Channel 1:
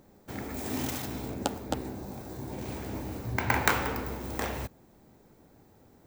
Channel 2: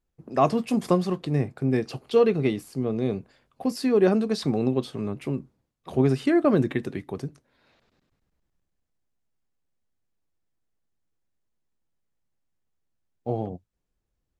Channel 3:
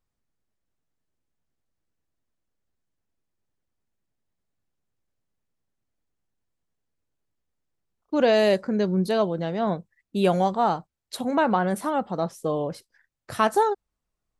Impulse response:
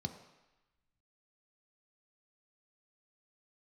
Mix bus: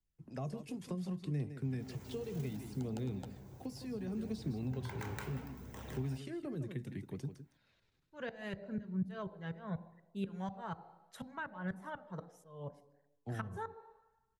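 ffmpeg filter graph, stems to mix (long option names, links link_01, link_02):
-filter_complex "[0:a]adelay=1350,volume=-10dB,asplit=3[link_01][link_02][link_03];[link_02]volume=-9.5dB[link_04];[link_03]volume=-5.5dB[link_05];[1:a]equalizer=frequency=610:width_type=o:width=2.2:gain=-8.5,acrossover=split=170|690|6600[link_06][link_07][link_08][link_09];[link_06]acompressor=threshold=-38dB:ratio=4[link_10];[link_07]acompressor=threshold=-29dB:ratio=4[link_11];[link_08]acompressor=threshold=-47dB:ratio=4[link_12];[link_09]acompressor=threshold=-54dB:ratio=4[link_13];[link_10][link_11][link_12][link_13]amix=inputs=4:normalize=0,volume=-3dB,asplit=4[link_14][link_15][link_16][link_17];[link_15]volume=-20.5dB[link_18];[link_16]volume=-11dB[link_19];[2:a]equalizer=frequency=1700:width=1.5:gain=11,aeval=exprs='val(0)*pow(10,-29*if(lt(mod(-4.1*n/s,1),2*abs(-4.1)/1000),1-mod(-4.1*n/s,1)/(2*abs(-4.1)/1000),(mod(-4.1*n/s,1)-2*abs(-4.1)/1000)/(1-2*abs(-4.1)/1000))/20)':channel_layout=same,volume=-6.5dB,asplit=2[link_20][link_21];[link_21]volume=-8dB[link_22];[link_17]apad=whole_len=326881[link_23];[link_01][link_23]sidechaincompress=threshold=-40dB:ratio=8:attack=32:release=920[link_24];[3:a]atrim=start_sample=2205[link_25];[link_04][link_18][link_22]amix=inputs=3:normalize=0[link_26];[link_26][link_25]afir=irnorm=-1:irlink=0[link_27];[link_05][link_19]amix=inputs=2:normalize=0,aecho=0:1:160:1[link_28];[link_24][link_14][link_20][link_27][link_28]amix=inputs=5:normalize=0,bandreject=frequency=1200:width=12,acrossover=split=170[link_29][link_30];[link_30]acompressor=threshold=-35dB:ratio=6[link_31];[link_29][link_31]amix=inputs=2:normalize=0,flanger=delay=0.2:depth=2.3:regen=-53:speed=0.69:shape=triangular"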